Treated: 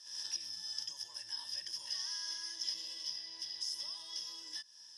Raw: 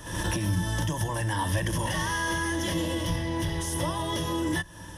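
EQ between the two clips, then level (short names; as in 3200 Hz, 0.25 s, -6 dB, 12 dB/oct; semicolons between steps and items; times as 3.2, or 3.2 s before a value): band-pass 5100 Hz, Q 20; +11.5 dB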